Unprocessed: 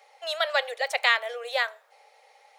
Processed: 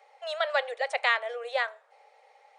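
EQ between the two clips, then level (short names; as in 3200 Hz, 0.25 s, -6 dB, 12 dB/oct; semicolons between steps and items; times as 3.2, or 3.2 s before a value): brick-wall FIR band-pass 370–9700 Hz; bell 6000 Hz -9 dB 2.4 oct; 0.0 dB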